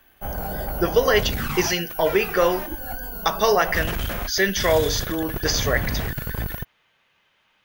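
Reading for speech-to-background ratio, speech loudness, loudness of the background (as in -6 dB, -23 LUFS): 6.5 dB, -22.5 LUFS, -29.0 LUFS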